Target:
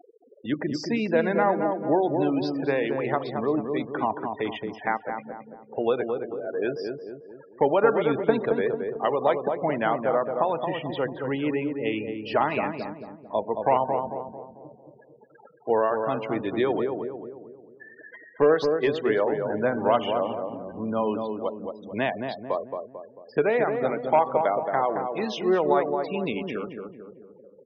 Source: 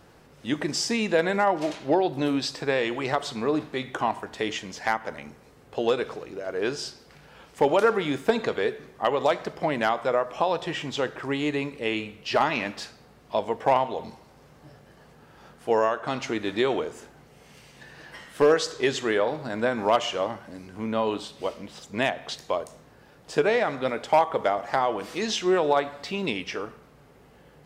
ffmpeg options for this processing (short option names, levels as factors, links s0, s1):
-filter_complex "[0:a]acrossover=split=270[s0][s1];[s1]acompressor=mode=upward:threshold=0.0224:ratio=2.5[s2];[s0][s2]amix=inputs=2:normalize=0,lowpass=6500,afftfilt=real='re*gte(hypot(re,im),0.0355)':imag='im*gte(hypot(re,im),0.0355)':win_size=1024:overlap=0.75,aemphasis=mode=reproduction:type=75kf,asplit=2[s3][s4];[s4]adelay=222,lowpass=f=980:p=1,volume=0.631,asplit=2[s5][s6];[s6]adelay=222,lowpass=f=980:p=1,volume=0.51,asplit=2[s7][s8];[s8]adelay=222,lowpass=f=980:p=1,volume=0.51,asplit=2[s9][s10];[s10]adelay=222,lowpass=f=980:p=1,volume=0.51,asplit=2[s11][s12];[s12]adelay=222,lowpass=f=980:p=1,volume=0.51,asplit=2[s13][s14];[s14]adelay=222,lowpass=f=980:p=1,volume=0.51,asplit=2[s15][s16];[s16]adelay=222,lowpass=f=980:p=1,volume=0.51[s17];[s3][s5][s7][s9][s11][s13][s15][s17]amix=inputs=8:normalize=0"